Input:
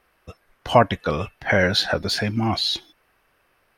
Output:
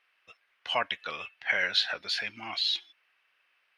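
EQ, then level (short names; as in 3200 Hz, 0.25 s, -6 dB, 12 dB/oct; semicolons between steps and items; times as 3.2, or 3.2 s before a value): band-pass 2700 Hz, Q 1.7; 0.0 dB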